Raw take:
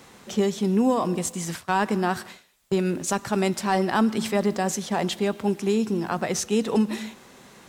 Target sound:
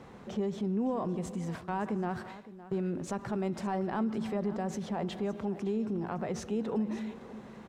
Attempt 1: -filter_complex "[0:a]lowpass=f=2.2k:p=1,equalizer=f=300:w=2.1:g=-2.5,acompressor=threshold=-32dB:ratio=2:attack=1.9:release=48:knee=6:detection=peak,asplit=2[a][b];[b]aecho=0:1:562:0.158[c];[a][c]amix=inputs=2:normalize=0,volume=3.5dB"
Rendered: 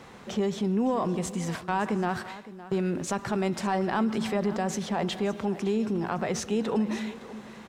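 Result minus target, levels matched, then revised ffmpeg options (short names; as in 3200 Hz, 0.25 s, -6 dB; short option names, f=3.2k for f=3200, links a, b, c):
compressor: peak gain reduction -4.5 dB; 2000 Hz band +4.5 dB
-filter_complex "[0:a]lowpass=f=650:p=1,equalizer=f=300:w=2.1:g=-2.5,acompressor=threshold=-41.5dB:ratio=2:attack=1.9:release=48:knee=6:detection=peak,asplit=2[a][b];[b]aecho=0:1:562:0.158[c];[a][c]amix=inputs=2:normalize=0,volume=3.5dB"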